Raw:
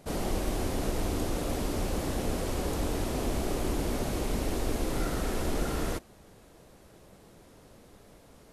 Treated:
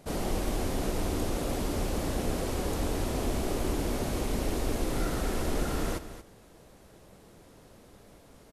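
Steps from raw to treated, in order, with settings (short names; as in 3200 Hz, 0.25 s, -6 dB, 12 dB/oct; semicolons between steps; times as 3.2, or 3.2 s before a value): echo 0.23 s -12.5 dB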